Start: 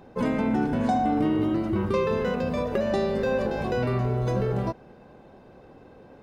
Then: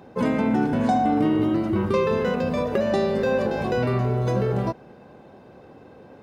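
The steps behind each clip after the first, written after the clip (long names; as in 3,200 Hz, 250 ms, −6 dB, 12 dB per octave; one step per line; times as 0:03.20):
high-pass filter 76 Hz
level +3 dB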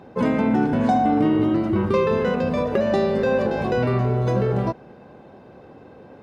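high-shelf EQ 6,100 Hz −8 dB
level +2 dB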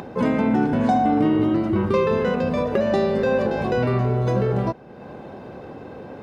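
upward compression, threshold −28 dBFS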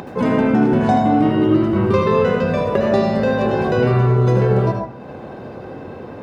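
convolution reverb RT60 0.55 s, pre-delay 68 ms, DRR 2 dB
level +2.5 dB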